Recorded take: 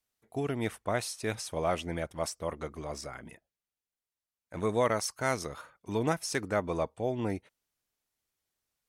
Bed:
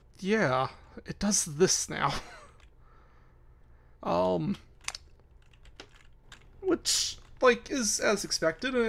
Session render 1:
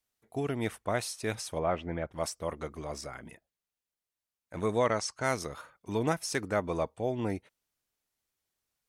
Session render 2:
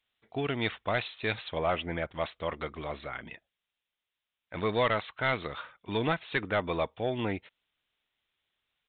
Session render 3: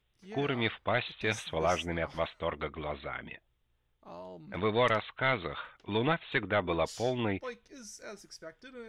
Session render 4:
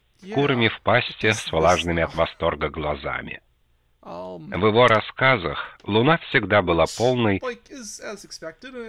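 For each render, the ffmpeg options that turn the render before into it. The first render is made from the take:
ffmpeg -i in.wav -filter_complex "[0:a]asplit=3[link_01][link_02][link_03];[link_01]afade=type=out:start_time=1.58:duration=0.02[link_04];[link_02]lowpass=2100,afade=type=in:start_time=1.58:duration=0.02,afade=type=out:start_time=2.12:duration=0.02[link_05];[link_03]afade=type=in:start_time=2.12:duration=0.02[link_06];[link_04][link_05][link_06]amix=inputs=3:normalize=0,asettb=1/sr,asplit=3[link_07][link_08][link_09];[link_07]atrim=end=4.784[link_10];[link_08]atrim=start=4.78:end=5.24,asetpts=PTS-STARTPTS,afade=type=in:duration=0.004:curve=qsin,afade=type=out:start_time=0.456:duration=0.004:curve=qsin,lowpass=frequency=8100:width=0.5412,lowpass=frequency=8100:width=1.3066[link_11];[link_09]atrim=start=5.236[link_12];[link_10][link_11]acrossfade=duration=0.004:curve1=hsin:curve2=qsin[link_13];[link_13][link_12]acrossfade=duration=0.004:curve1=qsin:curve2=hsin" out.wav
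ffmpeg -i in.wav -af "crystalizer=i=8:c=0,aresample=8000,asoftclip=type=tanh:threshold=-18dB,aresample=44100" out.wav
ffmpeg -i in.wav -i bed.wav -filter_complex "[1:a]volume=-19dB[link_01];[0:a][link_01]amix=inputs=2:normalize=0" out.wav
ffmpeg -i in.wav -af "volume=11.5dB" out.wav

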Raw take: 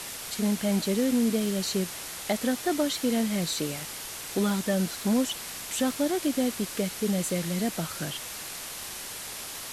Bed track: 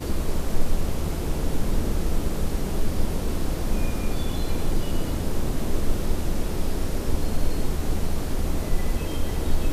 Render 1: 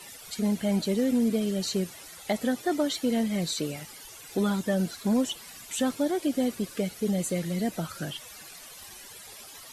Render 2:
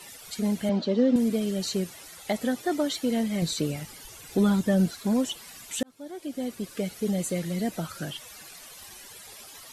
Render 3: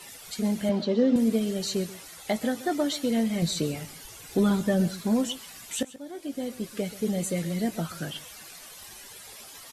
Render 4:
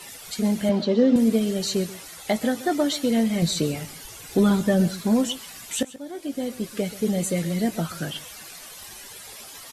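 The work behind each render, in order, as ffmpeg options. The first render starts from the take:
ffmpeg -i in.wav -af "afftdn=noise_reduction=14:noise_floor=-39" out.wav
ffmpeg -i in.wav -filter_complex "[0:a]asettb=1/sr,asplit=3[link_01][link_02][link_03];[link_01]atrim=end=0.694[link_04];[link_02]atrim=start=0.69:end=1.16,asetpts=PTS-STARTPTS,afade=type=in:duration=0.004:curve=qsin,afade=type=out:start_time=0.466:duration=0.004:curve=qsin,highpass=180,equalizer=frequency=240:width_type=q:width=4:gain=6,equalizer=frequency=550:width_type=q:width=4:gain=7,equalizer=frequency=1100:width_type=q:width=4:gain=4,equalizer=frequency=2300:width_type=q:width=4:gain=-7,lowpass=frequency=4800:width=0.5412,lowpass=frequency=4800:width=1.3066[link_05];[link_03]atrim=start=1.156[link_06];[link_04][link_05]acrossfade=duration=0.004:curve1=hsin:curve2=qsin[link_07];[link_07][link_06]acrossfade=duration=0.004:curve1=qsin:curve2=hsin,asettb=1/sr,asplit=3[link_08][link_09][link_10];[link_08]atrim=end=3.424[link_11];[link_09]atrim=start=3.42:end=4.9,asetpts=PTS-STARTPTS,afade=type=in:duration=0.004:curve=qsin,afade=type=out:start_time=1.476:duration=0.004:curve=qsin,lowshelf=frequency=230:gain=9[link_12];[link_10]atrim=start=4.896[link_13];[link_11][link_12]acrossfade=duration=0.004:curve1=hsin:curve2=qsin[link_14];[link_14][link_13]acrossfade=duration=0.004:curve1=qsin:curve2=hsin,asplit=2[link_15][link_16];[link_15]atrim=end=5.83,asetpts=PTS-STARTPTS,afade=type=out:start_time=5.826:duration=0.004:curve=hsin[link_17];[link_16]atrim=start=5.83,asetpts=PTS-STARTPTS,afade=type=in:duration=1.1[link_18];[link_17][link_18]concat=n=2:v=0:a=1" out.wav
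ffmpeg -i in.wav -filter_complex "[0:a]asplit=2[link_01][link_02];[link_02]adelay=18,volume=-11dB[link_03];[link_01][link_03]amix=inputs=2:normalize=0,aecho=1:1:133:0.141" out.wav
ffmpeg -i in.wav -af "volume=4dB" out.wav

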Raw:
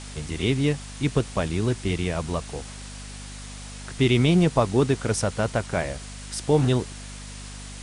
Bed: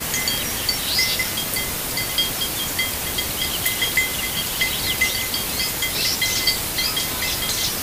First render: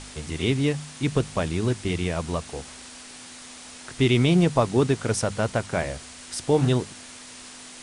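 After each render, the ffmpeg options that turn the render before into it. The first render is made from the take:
ffmpeg -i in.wav -af "bandreject=frequency=50:width_type=h:width=4,bandreject=frequency=100:width_type=h:width=4,bandreject=frequency=150:width_type=h:width=4,bandreject=frequency=200:width_type=h:width=4" out.wav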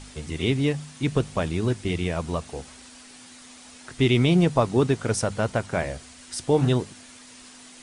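ffmpeg -i in.wav -af "afftdn=noise_reduction=6:noise_floor=-43" out.wav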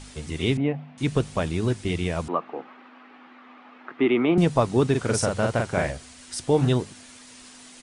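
ffmpeg -i in.wav -filter_complex "[0:a]asettb=1/sr,asplit=3[link_01][link_02][link_03];[link_01]atrim=end=0.574[link_04];[link_02]atrim=start=0.57:end=0.98,asetpts=PTS-STARTPTS,afade=type=in:duration=0.004:curve=qsin,afade=type=out:start_time=0.406:duration=0.004:curve=qsin,highpass=150,equalizer=frequency=230:width_type=q:width=4:gain=7,equalizer=frequency=370:width_type=q:width=4:gain=-7,equalizer=frequency=700:width_type=q:width=4:gain=8,equalizer=frequency=1200:width_type=q:width=4:gain=-5,equalizer=frequency=1700:width_type=q:width=4:gain=-7,lowpass=frequency=2300:width=0.5412,lowpass=frequency=2300:width=1.3066[link_05];[link_03]atrim=start=0.976[link_06];[link_04][link_05]acrossfade=duration=0.004:curve1=hsin:curve2=qsin[link_07];[link_07][link_06]acrossfade=duration=0.004:curve1=qsin:curve2=hsin,asettb=1/sr,asplit=3[link_08][link_09][link_10];[link_08]atrim=end=2.284[link_11];[link_09]atrim=start=2.28:end=4.38,asetpts=PTS-STARTPTS,afade=type=in:duration=0.004:curve=qsin,afade=type=out:start_time=2.096:duration=0.004:curve=qsin,highpass=frequency=220:width=0.5412,highpass=frequency=220:width=1.3066,equalizer=frequency=320:width_type=q:width=4:gain=5,equalizer=frequency=810:width_type=q:width=4:gain=5,equalizer=frequency=1200:width_type=q:width=4:gain=9,lowpass=frequency=2500:width=0.5412,lowpass=frequency=2500:width=1.3066[link_12];[link_10]atrim=start=4.376[link_13];[link_11][link_12]acrossfade=duration=0.004:curve1=hsin:curve2=qsin[link_14];[link_14][link_13]acrossfade=duration=0.004:curve1=qsin:curve2=hsin,asplit=3[link_15][link_16][link_17];[link_15]afade=type=out:start_time=4.94:duration=0.02[link_18];[link_16]asplit=2[link_19][link_20];[link_20]adelay=42,volume=-3dB[link_21];[link_19][link_21]amix=inputs=2:normalize=0,afade=type=in:start_time=4.94:duration=0.02,afade=type=out:start_time=5.9:duration=0.02[link_22];[link_17]afade=type=in:start_time=5.9:duration=0.02[link_23];[link_18][link_22][link_23]amix=inputs=3:normalize=0" out.wav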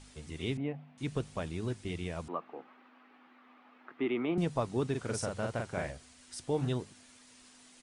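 ffmpeg -i in.wav -af "volume=-11.5dB" out.wav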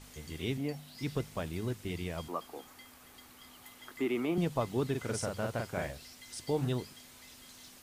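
ffmpeg -i in.wav -i bed.wav -filter_complex "[1:a]volume=-32.5dB[link_01];[0:a][link_01]amix=inputs=2:normalize=0" out.wav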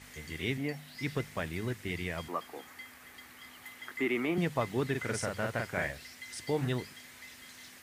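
ffmpeg -i in.wav -af "highpass=55,equalizer=frequency=1900:width_type=o:width=0.73:gain=11" out.wav

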